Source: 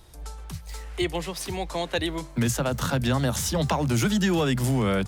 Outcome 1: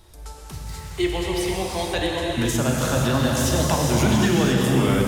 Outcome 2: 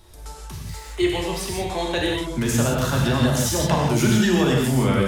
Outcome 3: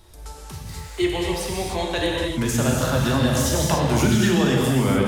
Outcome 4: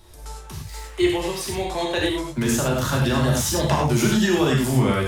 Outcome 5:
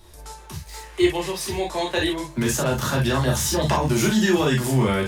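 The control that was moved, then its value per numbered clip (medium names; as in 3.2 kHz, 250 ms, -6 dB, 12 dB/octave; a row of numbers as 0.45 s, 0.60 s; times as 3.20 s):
gated-style reverb, gate: 530 ms, 200 ms, 320 ms, 130 ms, 80 ms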